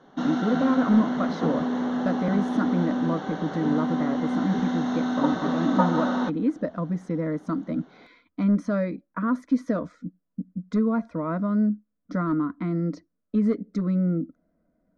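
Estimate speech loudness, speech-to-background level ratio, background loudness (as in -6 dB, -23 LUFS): -27.0 LUFS, 0.0 dB, -27.0 LUFS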